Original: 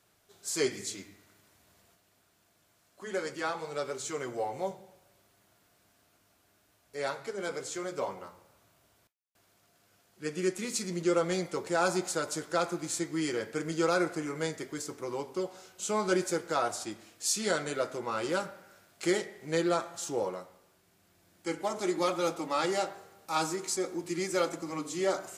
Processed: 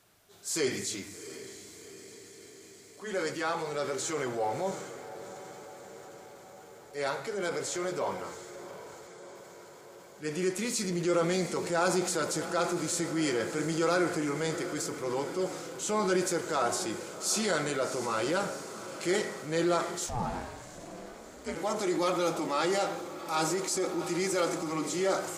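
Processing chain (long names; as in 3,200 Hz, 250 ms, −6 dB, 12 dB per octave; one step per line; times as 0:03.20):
in parallel at +2 dB: brickwall limiter −26 dBFS, peak gain reduction 10.5 dB
on the sum: feedback delay with all-pass diffusion 724 ms, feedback 66%, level −13.5 dB
transient designer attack −4 dB, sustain +3 dB
0:20.06–0:21.54: ring modulation 400 Hz → 93 Hz
level −3 dB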